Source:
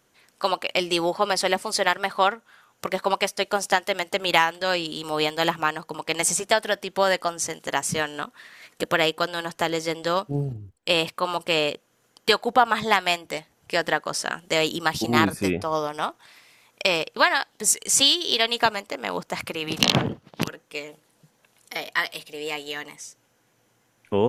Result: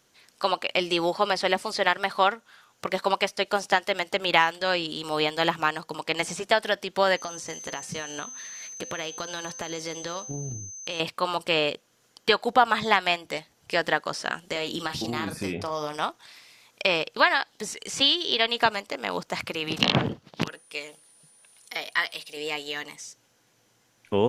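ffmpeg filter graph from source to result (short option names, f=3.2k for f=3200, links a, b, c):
-filter_complex "[0:a]asettb=1/sr,asplit=3[a][b][c];[a]atrim=end=7.164[d];[b]atrim=start=7.16:end=11,asetpts=PTS-STARTPTS,afade=t=in:d=0.004:c=qsin,afade=t=out:st=3.836:d=0.004:c=qsin,acompressor=threshold=-28dB:ratio=6:attack=3.2:release=140:knee=1:detection=peak,aeval=exprs='val(0)+0.01*sin(2*PI*6200*n/s)':c=same,bandreject=f=258.2:t=h:w=4,bandreject=f=516.4:t=h:w=4,bandreject=f=774.6:t=h:w=4,bandreject=f=1.0328k:t=h:w=4,bandreject=f=1.291k:t=h:w=4,bandreject=f=1.5492k:t=h:w=4,bandreject=f=1.8074k:t=h:w=4,bandreject=f=2.0656k:t=h:w=4,bandreject=f=2.3238k:t=h:w=4,bandreject=f=2.582k:t=h:w=4,bandreject=f=2.8402k:t=h:w=4,bandreject=f=3.0984k:t=h:w=4,bandreject=f=3.3566k:t=h:w=4,bandreject=f=3.6148k:t=h:w=4,bandreject=f=3.873k:t=h:w=4,bandreject=f=4.1312k:t=h:w=4,bandreject=f=4.3894k:t=h:w=4,bandreject=f=4.6476k:t=h:w=4,bandreject=f=4.9058k:t=h:w=4,bandreject=f=5.164k:t=h:w=4,bandreject=f=5.4222k:t=h:w=4,bandreject=f=5.6804k:t=h:w=4,bandreject=f=5.9386k:t=h:w=4,bandreject=f=6.1968k:t=h:w=4,bandreject=f=6.455k:t=h:w=4,bandreject=f=6.7132k:t=h:w=4,bandreject=f=6.9714k:t=h:w=4,bandreject=f=7.2296k:t=h:w=4,bandreject=f=7.4878k:t=h:w=4,bandreject=f=7.746k:t=h:w=4,bandreject=f=8.0042k:t=h:w=4,bandreject=f=8.2624k:t=h:w=4,bandreject=f=8.5206k:t=h:w=4,bandreject=f=8.7788k:t=h:w=4,bandreject=f=9.037k:t=h:w=4,bandreject=f=9.2952k:t=h:w=4,bandreject=f=9.5534k:t=h:w=4[e];[c]atrim=start=10.996[f];[d][e]acrossfade=d=0.004:c1=hsin:c2=qsin[g];[g][f]acrossfade=d=0.004:c1=qsin:c2=hsin,asettb=1/sr,asplit=3[h][i][j];[h]atrim=end=14.464[k];[i]atrim=start=14.46:end=15.97,asetpts=PTS-STARTPTS,afade=t=in:d=0.004:c=qsin,afade=t=out:st=1.506:d=0.004:c=qsin,acompressor=threshold=-24dB:ratio=5:attack=3.2:release=140:knee=1:detection=peak,asplit=2[l][m];[m]adelay=40,volume=-10dB[n];[l][n]amix=inputs=2:normalize=0,atrim=end_sample=66591[o];[j]atrim=start=15.966[p];[k][o]acrossfade=d=0.004:c1=hsin:c2=qsin[q];[q][p]acrossfade=d=0.004:c1=qsin:c2=hsin,asettb=1/sr,asplit=3[r][s][t];[r]atrim=end=20.474[u];[s]atrim=start=20.47:end=22.37,asetpts=PTS-STARTPTS,afade=t=in:d=0.004:c=qsin,afade=t=out:st=1.896:d=0.004:c=qsin,lowshelf=f=460:g=-6.5,aeval=exprs='val(0)+0.00158*sin(2*PI*9400*n/s)':c=same[v];[t]atrim=start=22.366[w];[u][v]acrossfade=d=0.004:c1=hsin:c2=qsin[x];[x][w]acrossfade=d=0.004:c1=qsin:c2=hsin,acrossover=split=3300[y][z];[z]acompressor=threshold=-40dB:ratio=4:attack=1:release=60[aa];[y][aa]amix=inputs=2:normalize=0,equalizer=f=4.8k:w=0.87:g=6.5,volume=-1.5dB"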